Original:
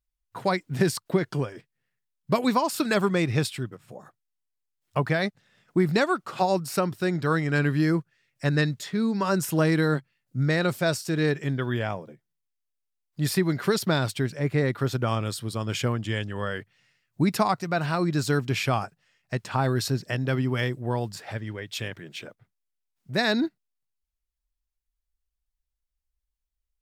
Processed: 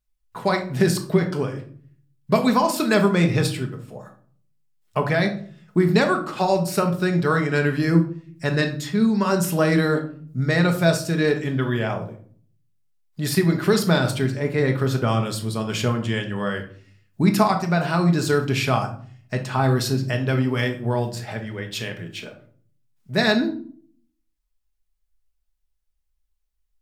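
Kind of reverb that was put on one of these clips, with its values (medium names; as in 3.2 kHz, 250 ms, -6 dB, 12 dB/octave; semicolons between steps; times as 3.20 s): simulated room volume 540 m³, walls furnished, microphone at 1.4 m; trim +2.5 dB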